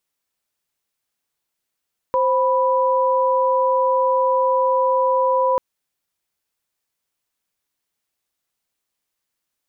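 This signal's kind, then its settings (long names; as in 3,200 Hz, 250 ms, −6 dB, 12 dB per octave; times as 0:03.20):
held notes C5/B5 sine, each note −17.5 dBFS 3.44 s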